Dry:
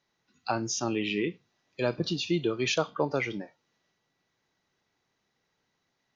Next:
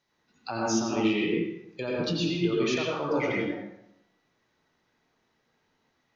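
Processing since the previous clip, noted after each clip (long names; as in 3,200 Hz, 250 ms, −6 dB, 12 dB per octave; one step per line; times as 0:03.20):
brickwall limiter −23 dBFS, peak gain reduction 9.5 dB
convolution reverb RT60 0.85 s, pre-delay 77 ms, DRR −4 dB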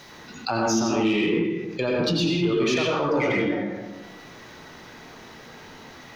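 in parallel at −5.5 dB: soft clipping −29 dBFS, distortion −9 dB
on the sum: envelope flattener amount 50%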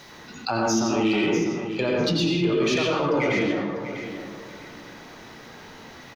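repeating echo 648 ms, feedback 26%, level −11 dB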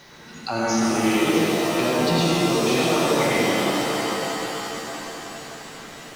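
reverb with rising layers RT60 3.6 s, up +7 semitones, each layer −2 dB, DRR 0 dB
level −2 dB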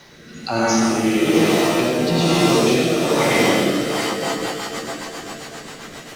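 rotating-speaker cabinet horn 1.1 Hz, later 7.5 Hz, at 0:03.73
level +5.5 dB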